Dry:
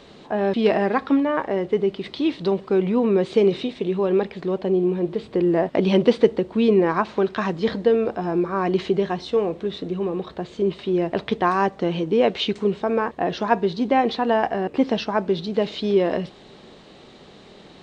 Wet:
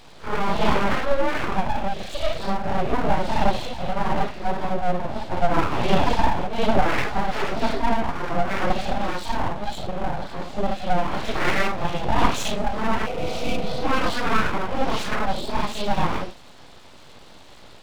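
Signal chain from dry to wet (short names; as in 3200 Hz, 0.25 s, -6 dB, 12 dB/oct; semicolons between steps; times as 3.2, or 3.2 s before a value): phase scrambler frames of 0.2 s; full-wave rectifier; spectral repair 13.09–13.74, 350–2200 Hz after; gain +2 dB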